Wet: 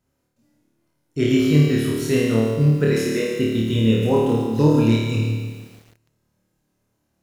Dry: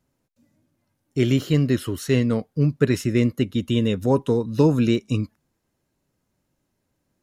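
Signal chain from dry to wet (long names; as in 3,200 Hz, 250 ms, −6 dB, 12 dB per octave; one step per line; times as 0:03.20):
0:02.89–0:03.33: high-pass filter 270 Hz 24 dB per octave
flutter between parallel walls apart 4.6 metres, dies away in 0.98 s
feedback echo at a low word length 145 ms, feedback 55%, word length 7 bits, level −8 dB
level −2.5 dB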